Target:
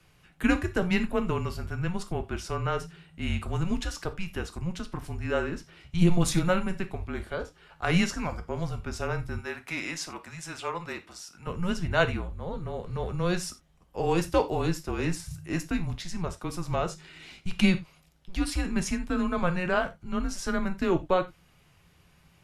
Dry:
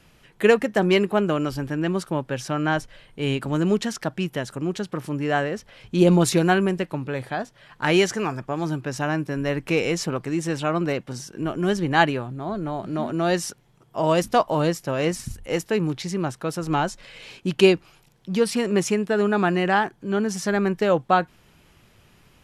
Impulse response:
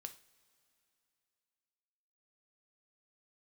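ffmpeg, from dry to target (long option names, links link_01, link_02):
-filter_complex "[0:a]asettb=1/sr,asplit=3[link_01][link_02][link_03];[link_01]atrim=end=9.384[link_04];[link_02]atrim=start=9.38:end=11.47,asetpts=PTS-STARTPTS,afade=type=in:duration=0.004:curve=qsin,afade=type=out:start_time=2.086:duration=0.004:curve=qsin,highpass=740[link_05];[link_03]atrim=start=11.466[link_06];[link_04][link_05]acrossfade=duration=0.004:curve1=hsin:curve2=qsin[link_07];[link_07][link_06]acrossfade=duration=0.004:curve1=qsin:curve2=hsin,afreqshift=-180[link_08];[1:a]atrim=start_sample=2205,atrim=end_sample=4410[link_09];[link_08][link_09]afir=irnorm=-1:irlink=0"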